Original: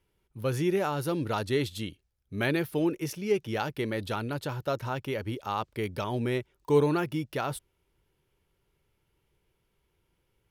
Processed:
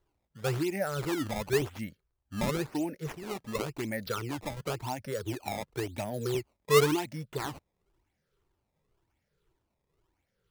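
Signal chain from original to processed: drifting ripple filter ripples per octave 0.64, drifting -1.9 Hz, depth 19 dB; decimation with a swept rate 17×, swing 160% 0.94 Hz; 4.06–6.35 s: three bands compressed up and down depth 70%; trim -7 dB

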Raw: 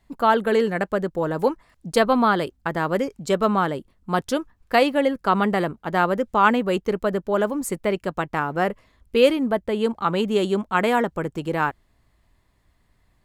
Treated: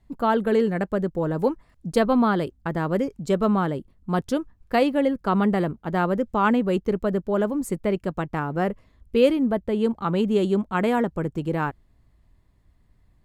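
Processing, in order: bass shelf 420 Hz +11 dB; trim -6.5 dB

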